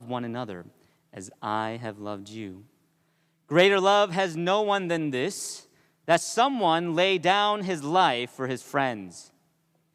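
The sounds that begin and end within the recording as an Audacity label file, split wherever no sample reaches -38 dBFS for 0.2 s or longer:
1.140000	2.580000	sound
3.510000	5.600000	sound
6.080000	9.210000	sound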